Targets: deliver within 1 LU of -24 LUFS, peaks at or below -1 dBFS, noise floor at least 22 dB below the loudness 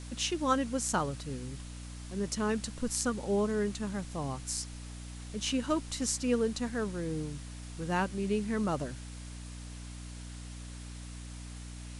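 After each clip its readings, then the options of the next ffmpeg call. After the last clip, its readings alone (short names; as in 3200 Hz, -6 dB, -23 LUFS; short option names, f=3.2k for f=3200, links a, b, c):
hum 60 Hz; harmonics up to 300 Hz; hum level -41 dBFS; noise floor -44 dBFS; noise floor target -55 dBFS; loudness -33.0 LUFS; peak -14.0 dBFS; loudness target -24.0 LUFS
-> -af "bandreject=f=60:t=h:w=4,bandreject=f=120:t=h:w=4,bandreject=f=180:t=h:w=4,bandreject=f=240:t=h:w=4,bandreject=f=300:t=h:w=4"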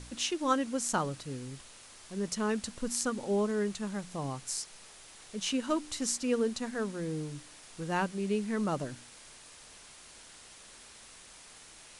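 hum none; noise floor -53 dBFS; noise floor target -56 dBFS
-> -af "afftdn=nr=6:nf=-53"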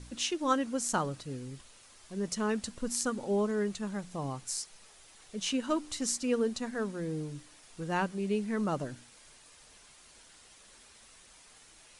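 noise floor -58 dBFS; loudness -33.5 LUFS; peak -14.0 dBFS; loudness target -24.0 LUFS
-> -af "volume=9.5dB"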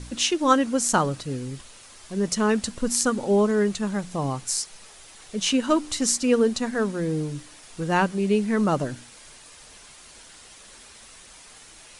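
loudness -24.0 LUFS; peak -4.5 dBFS; noise floor -48 dBFS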